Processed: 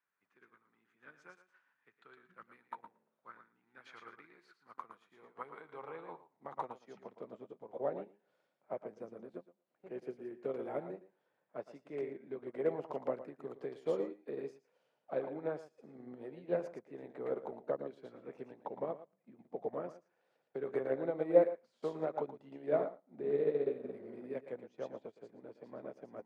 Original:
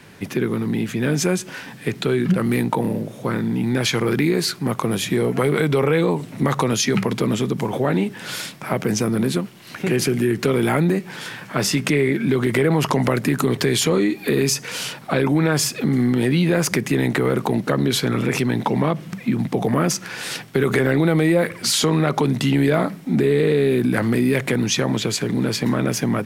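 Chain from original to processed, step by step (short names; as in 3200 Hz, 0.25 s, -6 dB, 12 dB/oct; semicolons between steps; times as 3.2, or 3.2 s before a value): band-pass sweep 1300 Hz -> 580 Hz, 4.59–7.6; thinning echo 0.114 s, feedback 22%, high-pass 190 Hz, level -5 dB; spectral repair 23.68–24.14, 280–1900 Hz both; upward expander 2.5:1, over -39 dBFS; gain -2 dB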